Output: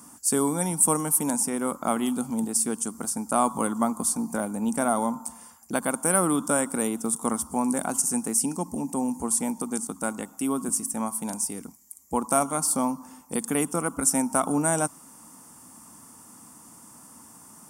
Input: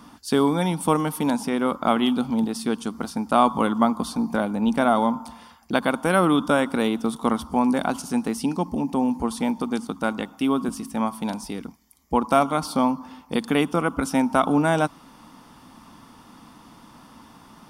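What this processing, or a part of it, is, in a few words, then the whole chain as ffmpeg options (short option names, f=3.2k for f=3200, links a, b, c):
budget condenser microphone: -af "highpass=72,highshelf=f=5.5k:t=q:w=3:g=14,volume=-5dB"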